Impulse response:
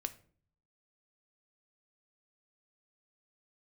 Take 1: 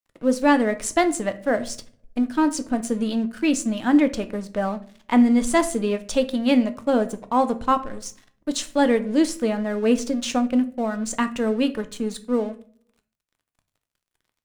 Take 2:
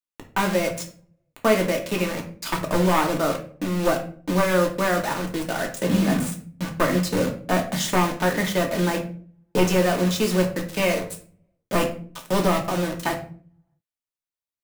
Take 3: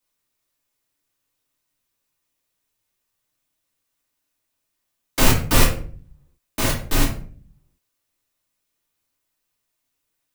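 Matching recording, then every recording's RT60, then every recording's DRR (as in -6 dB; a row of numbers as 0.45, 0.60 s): 1; 0.50, 0.45, 0.45 s; 9.0, 1.0, -4.0 dB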